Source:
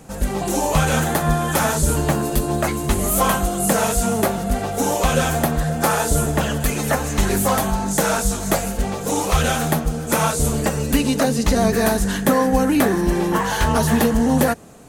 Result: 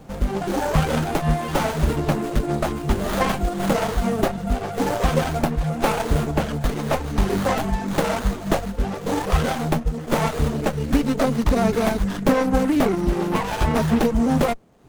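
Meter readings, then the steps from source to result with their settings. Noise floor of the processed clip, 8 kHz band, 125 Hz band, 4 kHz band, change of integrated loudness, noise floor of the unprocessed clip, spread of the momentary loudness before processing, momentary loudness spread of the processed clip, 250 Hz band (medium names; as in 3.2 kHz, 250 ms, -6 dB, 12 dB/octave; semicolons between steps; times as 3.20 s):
-32 dBFS, -13.0 dB, -2.0 dB, -5.0 dB, -3.0 dB, -27 dBFS, 4 LU, 5 LU, -2.0 dB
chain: reverb removal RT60 0.72 s; sliding maximum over 17 samples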